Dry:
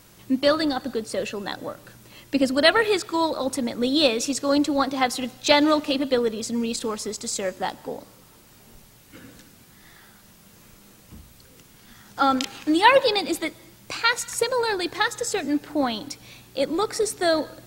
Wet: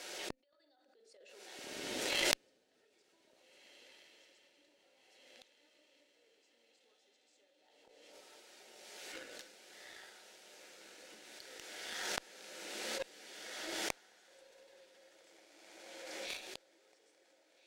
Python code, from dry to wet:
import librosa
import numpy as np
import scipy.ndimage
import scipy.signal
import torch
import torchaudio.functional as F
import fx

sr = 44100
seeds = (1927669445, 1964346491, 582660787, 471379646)

y = scipy.signal.sosfilt(scipy.signal.butter(4, 410.0, 'highpass', fs=sr, output='sos'), x)
y = fx.room_shoebox(y, sr, seeds[0], volume_m3=530.0, walls='furnished', distance_m=1.0)
y = fx.over_compress(y, sr, threshold_db=-26.0, ratio=-0.5)
y = scipy.signal.sosfilt(scipy.signal.butter(2, 6800.0, 'lowpass', fs=sr, output='sos'), y)
y = fx.peak_eq(y, sr, hz=1100.0, db=-14.0, octaves=0.36)
y = fx.gate_flip(y, sr, shuts_db=-30.0, range_db=-40)
y = fx.echo_diffused(y, sr, ms=1743, feedback_pct=46, wet_db=-5)
y = fx.cheby_harmonics(y, sr, harmonics=(3, 4), levels_db=(-10, -40), full_scale_db=-22.5)
y = fx.pre_swell(y, sr, db_per_s=28.0)
y = y * librosa.db_to_amplitude(18.0)